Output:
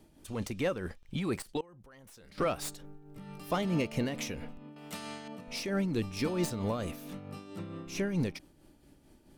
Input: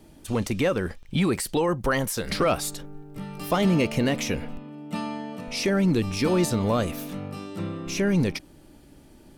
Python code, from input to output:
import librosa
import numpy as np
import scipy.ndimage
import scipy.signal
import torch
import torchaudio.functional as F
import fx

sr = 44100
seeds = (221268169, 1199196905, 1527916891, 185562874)

y = fx.tracing_dist(x, sr, depth_ms=0.027)
y = y * (1.0 - 0.49 / 2.0 + 0.49 / 2.0 * np.cos(2.0 * np.pi * 4.5 * (np.arange(len(y)) / sr)))
y = fx.level_steps(y, sr, step_db=24, at=(1.42, 2.38))
y = fx.spectral_comp(y, sr, ratio=2.0, at=(4.76, 5.28))
y = y * 10.0 ** (-7.0 / 20.0)